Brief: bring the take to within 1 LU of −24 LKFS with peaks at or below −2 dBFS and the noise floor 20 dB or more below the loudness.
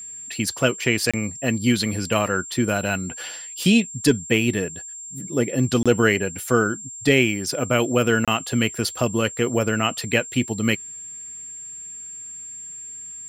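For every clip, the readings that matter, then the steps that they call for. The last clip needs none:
number of dropouts 3; longest dropout 26 ms; interfering tone 7,400 Hz; level of the tone −34 dBFS; integrated loudness −22.0 LKFS; sample peak −2.5 dBFS; target loudness −24.0 LKFS
→ repair the gap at 0:01.11/0:05.83/0:08.25, 26 ms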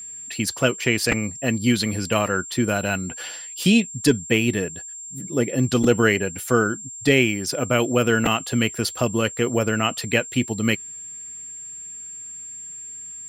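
number of dropouts 0; interfering tone 7,400 Hz; level of the tone −34 dBFS
→ notch filter 7,400 Hz, Q 30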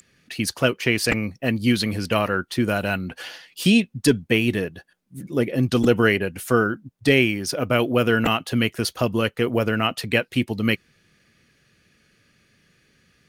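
interfering tone none found; integrated loudness −22.0 LKFS; sample peak −3.0 dBFS; target loudness −24.0 LKFS
→ level −2 dB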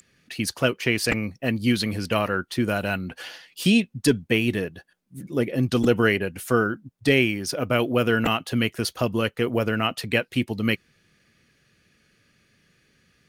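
integrated loudness −24.0 LKFS; sample peak −5.0 dBFS; background noise floor −65 dBFS

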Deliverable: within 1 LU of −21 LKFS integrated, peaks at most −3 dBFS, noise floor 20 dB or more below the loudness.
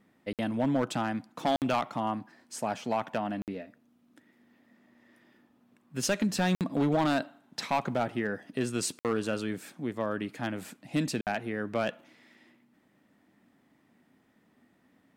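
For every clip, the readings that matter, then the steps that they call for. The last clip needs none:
share of clipped samples 0.6%; peaks flattened at −20.5 dBFS; number of dropouts 6; longest dropout 58 ms; integrated loudness −31.5 LKFS; sample peak −20.5 dBFS; target loudness −21.0 LKFS
→ clipped peaks rebuilt −20.5 dBFS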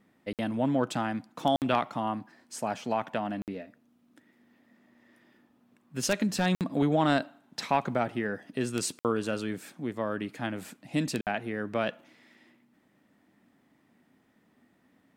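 share of clipped samples 0.0%; number of dropouts 6; longest dropout 58 ms
→ repair the gap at 0:00.33/0:01.56/0:03.42/0:06.55/0:08.99/0:11.21, 58 ms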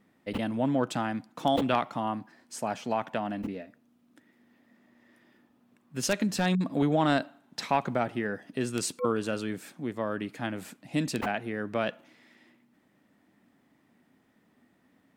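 number of dropouts 0; integrated loudness −30.5 LKFS; sample peak −11.5 dBFS; target loudness −21.0 LKFS
→ level +9.5 dB
brickwall limiter −3 dBFS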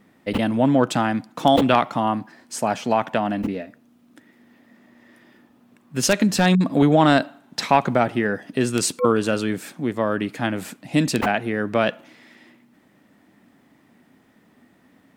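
integrated loudness −21.0 LKFS; sample peak −3.0 dBFS; background noise floor −58 dBFS

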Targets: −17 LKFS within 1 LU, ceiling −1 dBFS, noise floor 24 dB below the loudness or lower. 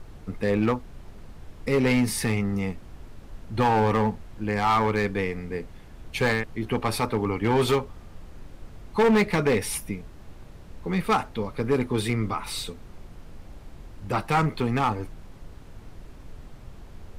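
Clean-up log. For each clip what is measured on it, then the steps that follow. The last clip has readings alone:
share of clipped samples 1.4%; peaks flattened at −16.0 dBFS; background noise floor −46 dBFS; target noise floor −50 dBFS; integrated loudness −25.5 LKFS; sample peak −16.0 dBFS; target loudness −17.0 LKFS
→ clipped peaks rebuilt −16 dBFS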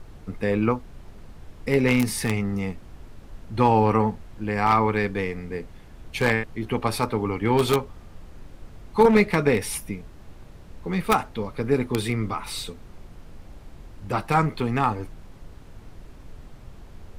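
share of clipped samples 0.0%; background noise floor −46 dBFS; target noise floor −48 dBFS
→ noise reduction from a noise print 6 dB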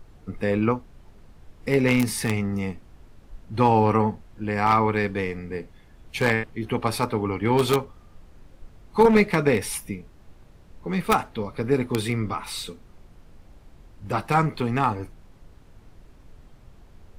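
background noise floor −52 dBFS; integrated loudness −24.0 LKFS; sample peak −7.0 dBFS; target loudness −17.0 LKFS
→ level +7 dB
brickwall limiter −1 dBFS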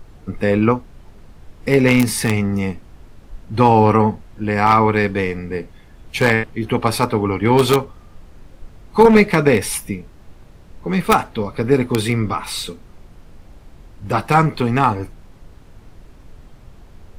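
integrated loudness −17.0 LKFS; sample peak −1.0 dBFS; background noise floor −45 dBFS

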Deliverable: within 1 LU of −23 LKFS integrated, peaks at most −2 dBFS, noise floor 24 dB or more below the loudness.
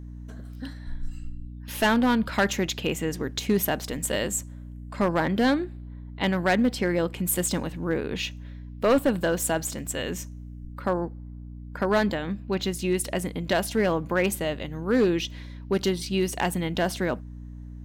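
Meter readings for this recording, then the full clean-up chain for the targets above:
share of clipped samples 0.8%; peaks flattened at −15.0 dBFS; mains hum 60 Hz; hum harmonics up to 300 Hz; level of the hum −38 dBFS; integrated loudness −26.0 LKFS; sample peak −15.0 dBFS; target loudness −23.0 LKFS
→ clipped peaks rebuilt −15 dBFS
hum removal 60 Hz, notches 5
level +3 dB

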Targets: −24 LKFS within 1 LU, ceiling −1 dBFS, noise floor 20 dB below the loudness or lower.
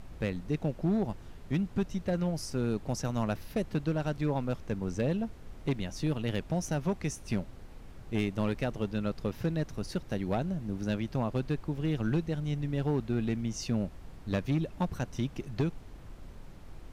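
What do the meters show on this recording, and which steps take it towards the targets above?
share of clipped samples 1.1%; peaks flattened at −22.5 dBFS; background noise floor −48 dBFS; target noise floor −53 dBFS; integrated loudness −33.0 LKFS; sample peak −22.5 dBFS; target loudness −24.0 LKFS
→ clipped peaks rebuilt −22.5 dBFS
noise reduction from a noise print 6 dB
level +9 dB

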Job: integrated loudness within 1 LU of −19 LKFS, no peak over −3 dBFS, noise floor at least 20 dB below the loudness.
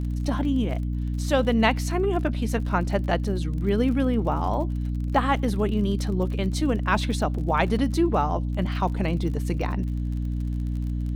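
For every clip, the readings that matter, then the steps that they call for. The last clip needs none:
crackle rate 39 per second; mains hum 60 Hz; hum harmonics up to 300 Hz; level of the hum −24 dBFS; integrated loudness −25.0 LKFS; sample peak −7.5 dBFS; target loudness −19.0 LKFS
→ click removal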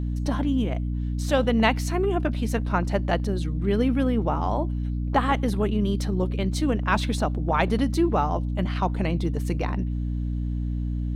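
crackle rate 0 per second; mains hum 60 Hz; hum harmonics up to 300 Hz; level of the hum −24 dBFS
→ mains-hum notches 60/120/180/240/300 Hz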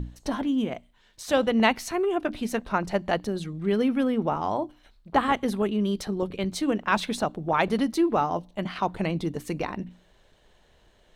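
mains hum none found; integrated loudness −26.5 LKFS; sample peak −8.0 dBFS; target loudness −19.0 LKFS
→ level +7.5 dB
brickwall limiter −3 dBFS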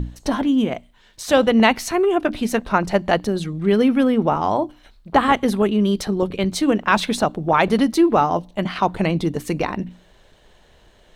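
integrated loudness −19.5 LKFS; sample peak −3.0 dBFS; background noise floor −53 dBFS

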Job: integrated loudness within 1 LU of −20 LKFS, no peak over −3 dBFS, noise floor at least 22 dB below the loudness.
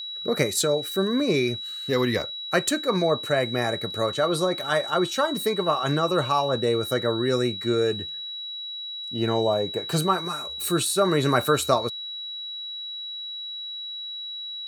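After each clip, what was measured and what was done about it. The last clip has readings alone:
interfering tone 3,900 Hz; level of the tone −32 dBFS; integrated loudness −25.0 LKFS; sample peak −5.5 dBFS; target loudness −20.0 LKFS
→ notch filter 3,900 Hz, Q 30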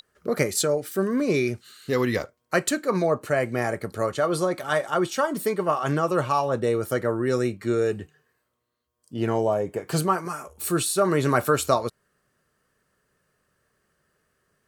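interfering tone none found; integrated loudness −25.0 LKFS; sample peak −6.0 dBFS; target loudness −20.0 LKFS
→ level +5 dB
brickwall limiter −3 dBFS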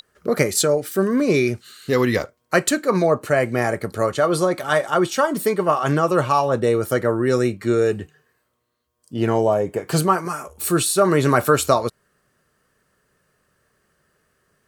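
integrated loudness −20.0 LKFS; sample peak −3.0 dBFS; background noise floor −70 dBFS

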